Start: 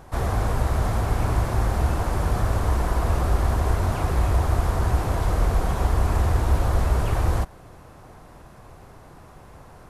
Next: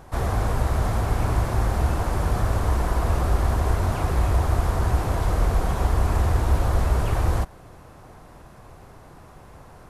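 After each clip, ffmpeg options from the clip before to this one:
ffmpeg -i in.wav -af anull out.wav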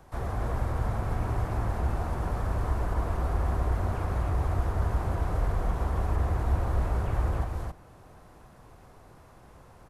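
ffmpeg -i in.wav -filter_complex "[0:a]aecho=1:1:270:0.631,acrossover=split=240|560|2300[link_01][link_02][link_03][link_04];[link_04]alimiter=level_in=16dB:limit=-24dB:level=0:latency=1:release=302,volume=-16dB[link_05];[link_01][link_02][link_03][link_05]amix=inputs=4:normalize=0,volume=-8dB" out.wav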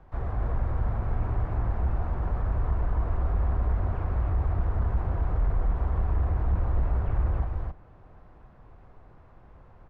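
ffmpeg -i in.wav -af "lowpass=2400,lowshelf=frequency=67:gain=10.5,aeval=exprs='0.335*(cos(1*acos(clip(val(0)/0.335,-1,1)))-cos(1*PI/2))+0.0531*(cos(5*acos(clip(val(0)/0.335,-1,1)))-cos(5*PI/2))+0.0237*(cos(7*acos(clip(val(0)/0.335,-1,1)))-cos(7*PI/2))':channel_layout=same,volume=-5.5dB" out.wav

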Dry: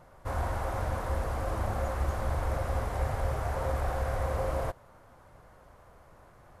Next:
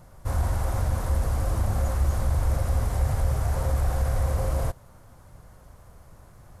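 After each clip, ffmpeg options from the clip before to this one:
ffmpeg -i in.wav -filter_complex "[0:a]bass=frequency=250:gain=10,treble=frequency=4000:gain=11,asplit=2[link_01][link_02];[link_02]alimiter=limit=-17.5dB:level=0:latency=1:release=29,volume=0dB[link_03];[link_01][link_03]amix=inputs=2:normalize=0,volume=-6.5dB" out.wav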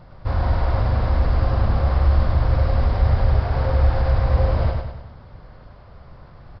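ffmpeg -i in.wav -af "aecho=1:1:100|200|300|400|500|600:0.631|0.309|0.151|0.0742|0.0364|0.0178,aresample=11025,aresample=44100,volume=5dB" out.wav

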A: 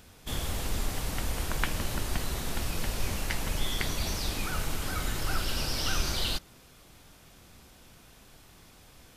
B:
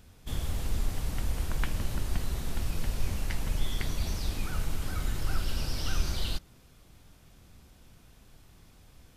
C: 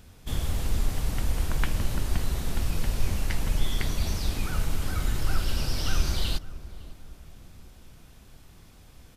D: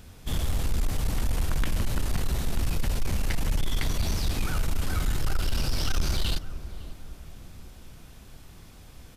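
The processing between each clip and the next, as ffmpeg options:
ffmpeg -i in.wav -af "lowshelf=frequency=210:gain=9.5,volume=-6.5dB" out.wav
ffmpeg -i in.wav -filter_complex "[0:a]asplit=2[link_01][link_02];[link_02]adelay=557,lowpass=frequency=1100:poles=1,volume=-16dB,asplit=2[link_03][link_04];[link_04]adelay=557,lowpass=frequency=1100:poles=1,volume=0.46,asplit=2[link_05][link_06];[link_06]adelay=557,lowpass=frequency=1100:poles=1,volume=0.46,asplit=2[link_07][link_08];[link_08]adelay=557,lowpass=frequency=1100:poles=1,volume=0.46[link_09];[link_01][link_03][link_05][link_07][link_09]amix=inputs=5:normalize=0,volume=4dB" out.wav
ffmpeg -i in.wav -af "asoftclip=type=tanh:threshold=-22dB,volume=3.5dB" out.wav

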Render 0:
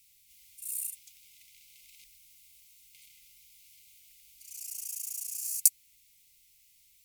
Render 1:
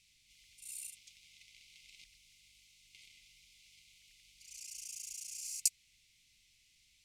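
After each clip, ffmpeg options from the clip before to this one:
ffmpeg -i in.wav -af "lowpass=5300,volume=2.5dB" out.wav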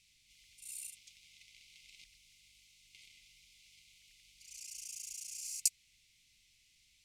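ffmpeg -i in.wav -af anull out.wav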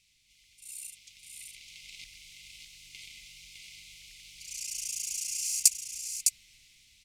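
ffmpeg -i in.wav -filter_complex "[0:a]dynaudnorm=framelen=540:gausssize=5:maxgain=11dB,asplit=2[link_01][link_02];[link_02]asoftclip=type=hard:threshold=-12dB,volume=-5dB[link_03];[link_01][link_03]amix=inputs=2:normalize=0,aecho=1:1:608:0.596,volume=-3.5dB" out.wav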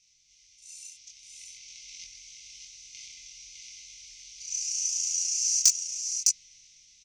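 ffmpeg -i in.wav -filter_complex "[0:a]lowpass=frequency=6000:width_type=q:width=8.2,asoftclip=type=hard:threshold=-4dB,asplit=2[link_01][link_02];[link_02]adelay=23,volume=-2.5dB[link_03];[link_01][link_03]amix=inputs=2:normalize=0,volume=-7dB" out.wav

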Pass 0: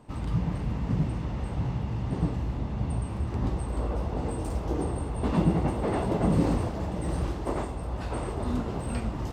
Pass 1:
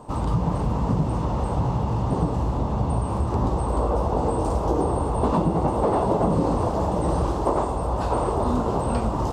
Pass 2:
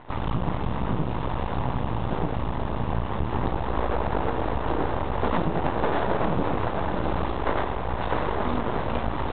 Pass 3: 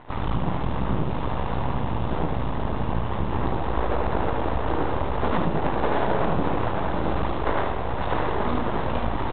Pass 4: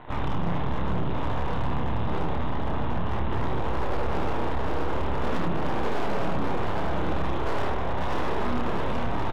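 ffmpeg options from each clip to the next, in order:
ffmpeg -i in.wav -filter_complex "[0:a]acrossover=split=6400[link_01][link_02];[link_02]acompressor=threshold=-59dB:ratio=4:attack=1:release=60[link_03];[link_01][link_03]amix=inputs=2:normalize=0,equalizer=frequency=500:width_type=o:width=1:gain=5,equalizer=frequency=1000:width_type=o:width=1:gain=10,equalizer=frequency=2000:width_type=o:width=1:gain=-9,equalizer=frequency=8000:width_type=o:width=1:gain=5,acompressor=threshold=-24dB:ratio=6,volume=6.5dB" out.wav
ffmpeg -i in.wav -af "highshelf=frequency=2100:gain=11.5,aresample=8000,aeval=exprs='max(val(0),0)':channel_layout=same,aresample=44100" out.wav
ffmpeg -i in.wav -af "aecho=1:1:75:0.531" out.wav
ffmpeg -i in.wav -filter_complex "[0:a]acrossover=split=440[link_01][link_02];[link_02]asoftclip=type=hard:threshold=-27dB[link_03];[link_01][link_03]amix=inputs=2:normalize=0,asplit=2[link_04][link_05];[link_05]adelay=29,volume=-5dB[link_06];[link_04][link_06]amix=inputs=2:normalize=0,asoftclip=type=tanh:threshold=-18.5dB,volume=1dB" out.wav

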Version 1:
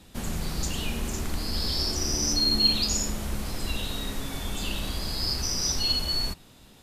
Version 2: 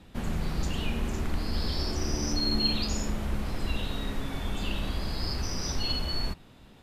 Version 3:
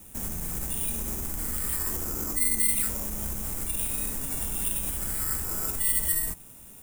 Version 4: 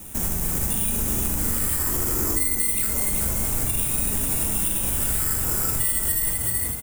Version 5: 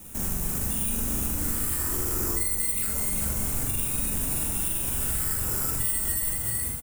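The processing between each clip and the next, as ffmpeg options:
ffmpeg -i in.wav -af "bass=frequency=250:gain=1,treble=frequency=4000:gain=-12" out.wav
ffmpeg -i in.wav -af "alimiter=level_in=1.5dB:limit=-24dB:level=0:latency=1:release=87,volume=-1.5dB,acrusher=samples=7:mix=1:aa=0.000001,aexciter=amount=13.9:drive=3.3:freq=6400,volume=-1.5dB" out.wav
ffmpeg -i in.wav -filter_complex "[0:a]asplit=2[link_01][link_02];[link_02]asplit=4[link_03][link_04][link_05][link_06];[link_03]adelay=380,afreqshift=47,volume=-6.5dB[link_07];[link_04]adelay=760,afreqshift=94,volume=-15.1dB[link_08];[link_05]adelay=1140,afreqshift=141,volume=-23.8dB[link_09];[link_06]adelay=1520,afreqshift=188,volume=-32.4dB[link_10];[link_07][link_08][link_09][link_10]amix=inputs=4:normalize=0[link_11];[link_01][link_11]amix=inputs=2:normalize=0,acompressor=threshold=-28dB:ratio=6,asplit=2[link_12][link_13];[link_13]aecho=0:1:43.73|78.72:0.316|0.282[link_14];[link_12][link_14]amix=inputs=2:normalize=0,volume=8.5dB" out.wav
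ffmpeg -i in.wav -filter_complex "[0:a]asplit=2[link_01][link_02];[link_02]adelay=43,volume=-4dB[link_03];[link_01][link_03]amix=inputs=2:normalize=0,volume=-5.5dB" out.wav

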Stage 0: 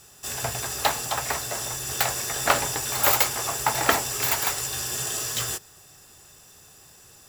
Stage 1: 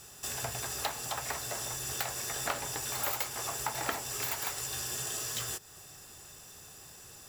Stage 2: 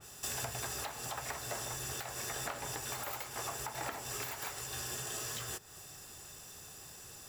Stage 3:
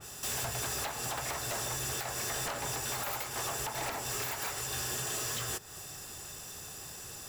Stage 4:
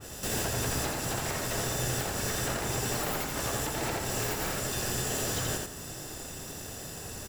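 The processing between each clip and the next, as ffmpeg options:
ffmpeg -i in.wav -af "acompressor=threshold=-37dB:ratio=2.5" out.wav
ffmpeg -i in.wav -af "alimiter=level_in=2dB:limit=-24dB:level=0:latency=1:release=199,volume=-2dB,adynamicequalizer=threshold=0.00316:dfrequency=2900:dqfactor=0.7:tfrequency=2900:tqfactor=0.7:attack=5:release=100:ratio=0.375:range=2:mode=cutabove:tftype=highshelf" out.wav
ffmpeg -i in.wav -af "aeval=exprs='0.0168*(abs(mod(val(0)/0.0168+3,4)-2)-1)':channel_layout=same,volume=6dB" out.wav
ffmpeg -i in.wav -filter_complex "[0:a]asplit=2[link_01][link_02];[link_02]acrusher=samples=37:mix=1:aa=0.000001,volume=-2dB[link_03];[link_01][link_03]amix=inputs=2:normalize=0,aecho=1:1:84|168|252|336:0.708|0.227|0.0725|0.0232" out.wav

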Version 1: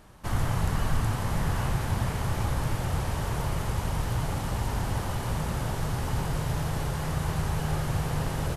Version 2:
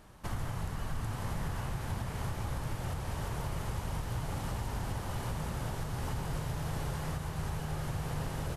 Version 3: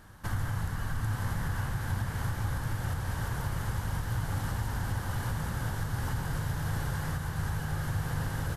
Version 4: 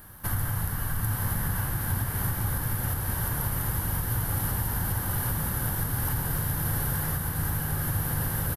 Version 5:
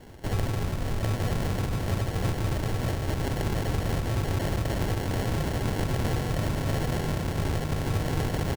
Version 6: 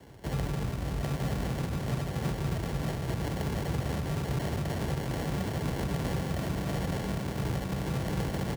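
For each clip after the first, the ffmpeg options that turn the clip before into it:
ffmpeg -i in.wav -af "alimiter=limit=-23dB:level=0:latency=1:release=432,volume=-3dB" out.wav
ffmpeg -i in.wav -af "equalizer=frequency=100:width_type=o:width=0.33:gain=7,equalizer=frequency=400:width_type=o:width=0.33:gain=-5,equalizer=frequency=630:width_type=o:width=0.33:gain=-5,equalizer=frequency=1600:width_type=o:width=0.33:gain=8,equalizer=frequency=2500:width_type=o:width=0.33:gain=-5,equalizer=frequency=12500:width_type=o:width=0.33:gain=4,volume=2dB" out.wav
ffmpeg -i in.wav -filter_complex "[0:a]aexciter=amount=7:drive=6.7:freq=10000,asplit=7[link_01][link_02][link_03][link_04][link_05][link_06][link_07];[link_02]adelay=457,afreqshift=73,volume=-17dB[link_08];[link_03]adelay=914,afreqshift=146,volume=-21dB[link_09];[link_04]adelay=1371,afreqshift=219,volume=-25dB[link_10];[link_05]adelay=1828,afreqshift=292,volume=-29dB[link_11];[link_06]adelay=2285,afreqshift=365,volume=-33.1dB[link_12];[link_07]adelay=2742,afreqshift=438,volume=-37.1dB[link_13];[link_01][link_08][link_09][link_10][link_11][link_12][link_13]amix=inputs=7:normalize=0,volume=2.5dB" out.wav
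ffmpeg -i in.wav -af "acrusher=samples=36:mix=1:aa=0.000001,volume=1dB" out.wav
ffmpeg -i in.wav -af "flanger=delay=0.1:depth=8.3:regen=-70:speed=1.6:shape=triangular,afreqshift=37" out.wav

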